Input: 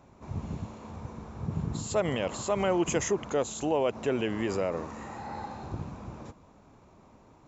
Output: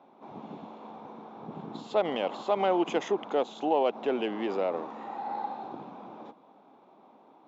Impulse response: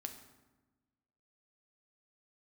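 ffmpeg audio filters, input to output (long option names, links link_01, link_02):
-af "adynamicsmooth=sensitivity=1.5:basefreq=2800,highpass=frequency=230:width=0.5412,highpass=frequency=230:width=1.3066,equalizer=frequency=790:width_type=q:width=4:gain=8,equalizer=frequency=1800:width_type=q:width=4:gain=-4,equalizer=frequency=3500:width_type=q:width=4:gain=10,lowpass=frequency=6300:width=0.5412,lowpass=frequency=6300:width=1.3066"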